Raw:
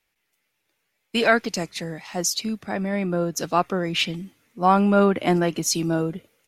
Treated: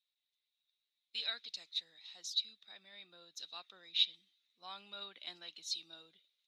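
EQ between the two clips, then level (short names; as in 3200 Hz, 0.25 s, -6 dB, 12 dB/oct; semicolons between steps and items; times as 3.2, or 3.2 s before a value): band-pass 3800 Hz, Q 16; +3.0 dB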